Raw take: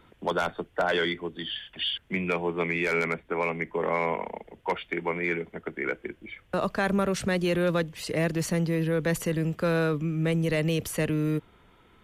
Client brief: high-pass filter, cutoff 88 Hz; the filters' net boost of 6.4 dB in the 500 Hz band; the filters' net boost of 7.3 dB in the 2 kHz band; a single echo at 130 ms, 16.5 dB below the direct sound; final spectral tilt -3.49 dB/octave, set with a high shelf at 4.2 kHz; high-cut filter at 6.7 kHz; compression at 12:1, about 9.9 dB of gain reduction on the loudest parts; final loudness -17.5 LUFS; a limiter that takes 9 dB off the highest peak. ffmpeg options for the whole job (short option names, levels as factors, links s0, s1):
-af "highpass=88,lowpass=6700,equalizer=f=500:t=o:g=7,equalizer=f=2000:t=o:g=7.5,highshelf=f=4200:g=4.5,acompressor=threshold=0.0501:ratio=12,alimiter=limit=0.075:level=0:latency=1,aecho=1:1:130:0.15,volume=5.62"